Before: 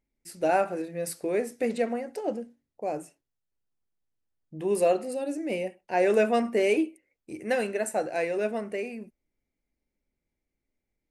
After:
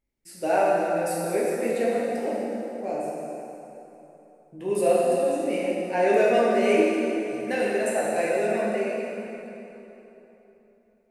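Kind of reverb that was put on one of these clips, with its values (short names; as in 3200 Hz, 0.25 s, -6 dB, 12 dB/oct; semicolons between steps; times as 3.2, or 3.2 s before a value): plate-style reverb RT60 3.4 s, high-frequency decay 0.75×, DRR -6.5 dB; gain -3.5 dB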